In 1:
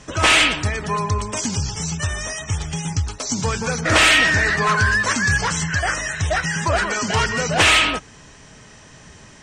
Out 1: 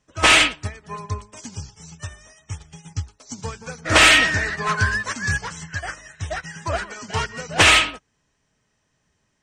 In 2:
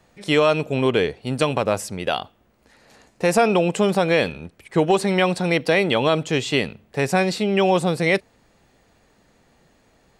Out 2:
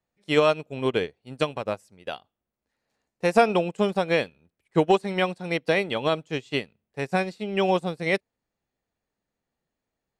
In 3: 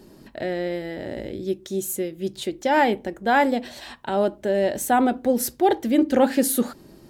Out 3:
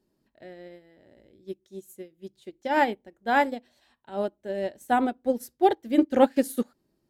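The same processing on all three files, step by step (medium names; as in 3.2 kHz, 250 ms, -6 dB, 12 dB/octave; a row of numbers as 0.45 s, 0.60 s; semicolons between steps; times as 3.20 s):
upward expansion 2.5:1, over -31 dBFS; peak normalisation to -6 dBFS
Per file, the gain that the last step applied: +2.0 dB, +0.5 dB, +1.0 dB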